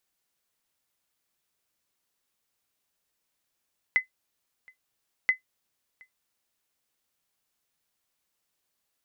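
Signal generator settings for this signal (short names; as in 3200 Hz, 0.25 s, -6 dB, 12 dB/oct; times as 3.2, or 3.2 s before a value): sonar ping 2030 Hz, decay 0.12 s, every 1.33 s, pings 2, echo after 0.72 s, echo -29.5 dB -13 dBFS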